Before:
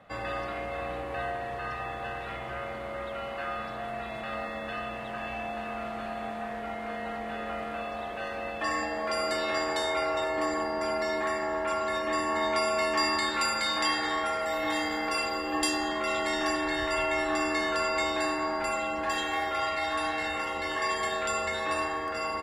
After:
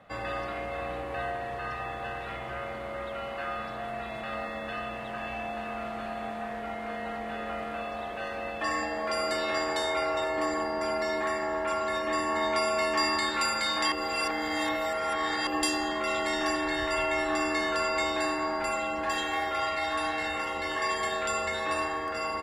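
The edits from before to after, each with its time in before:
13.92–15.47 s: reverse

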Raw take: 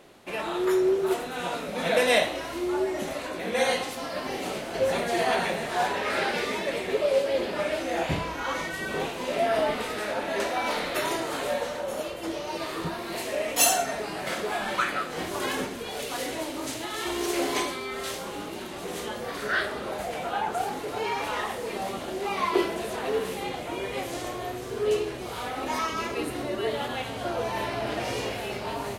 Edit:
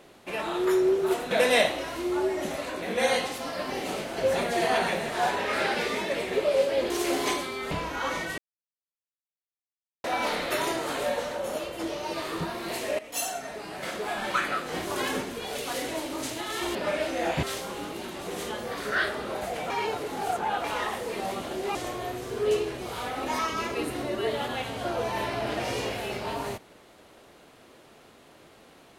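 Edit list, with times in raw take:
1.31–1.88 s: delete
7.47–8.15 s: swap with 17.19–18.00 s
8.82–10.48 s: mute
13.43–14.92 s: fade in, from -14.5 dB
20.27–21.21 s: reverse
22.32–24.15 s: delete

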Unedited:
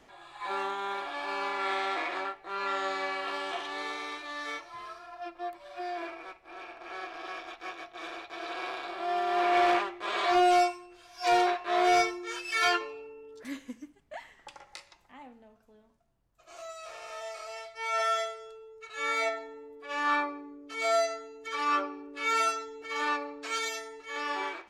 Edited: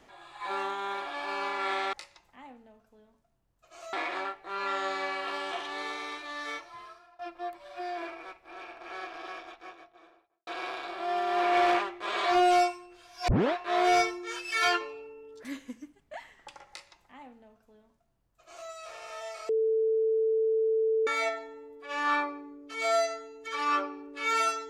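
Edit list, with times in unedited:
4.58–5.19 s: fade out, to -18 dB
7.06–8.47 s: studio fade out
11.28 s: tape start 0.25 s
14.69–16.69 s: copy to 1.93 s
17.49–19.07 s: bleep 443 Hz -23 dBFS

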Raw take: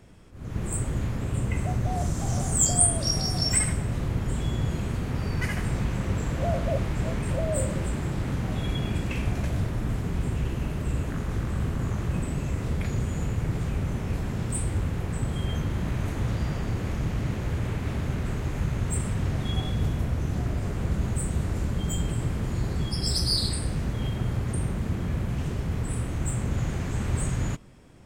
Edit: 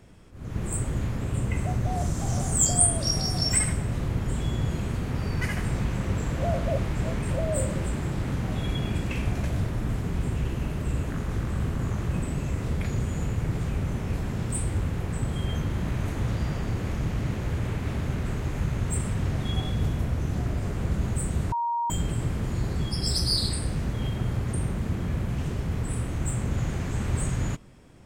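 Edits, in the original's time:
21.52–21.90 s: bleep 941 Hz -24 dBFS

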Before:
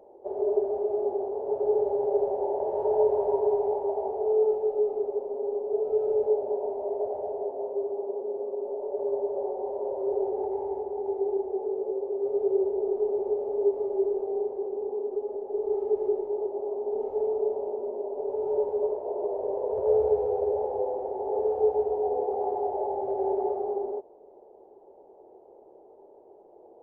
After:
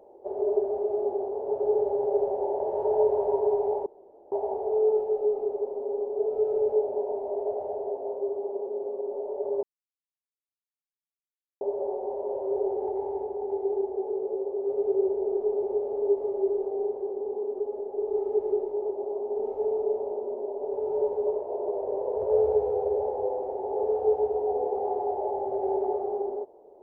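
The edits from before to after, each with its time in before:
3.86 s: insert room tone 0.46 s
9.17 s: insert silence 1.98 s

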